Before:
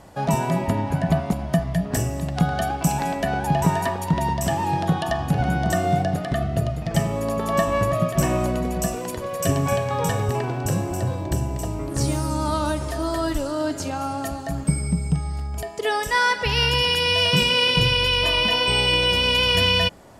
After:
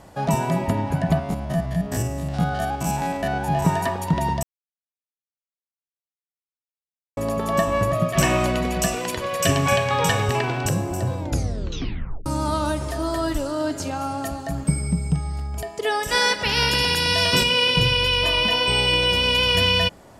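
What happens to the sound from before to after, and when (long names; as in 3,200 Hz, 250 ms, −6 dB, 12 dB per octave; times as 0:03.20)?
0:01.19–0:03.66: spectrum averaged block by block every 50 ms
0:04.43–0:07.17: silence
0:08.13–0:10.69: parametric band 2,800 Hz +10.5 dB 2.4 octaves
0:11.19: tape stop 1.07 s
0:16.07–0:17.42: ceiling on every frequency bin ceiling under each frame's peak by 14 dB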